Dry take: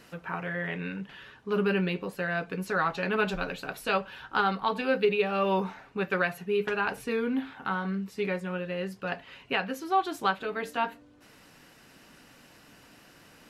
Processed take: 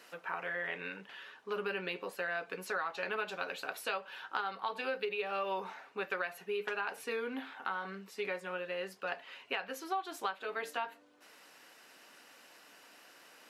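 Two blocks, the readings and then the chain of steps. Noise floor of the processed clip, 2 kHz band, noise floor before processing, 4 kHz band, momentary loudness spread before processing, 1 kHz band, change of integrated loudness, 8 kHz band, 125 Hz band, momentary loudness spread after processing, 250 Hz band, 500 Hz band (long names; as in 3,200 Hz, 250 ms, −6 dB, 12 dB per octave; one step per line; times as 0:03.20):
−60 dBFS, −6.0 dB, −56 dBFS, −6.0 dB, 9 LU, −8.0 dB, −8.5 dB, −2.5 dB, below −15 dB, 20 LU, −16.0 dB, −9.0 dB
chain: high-pass filter 470 Hz 12 dB per octave
downward compressor, threshold −31 dBFS, peak gain reduction 10.5 dB
level −1.5 dB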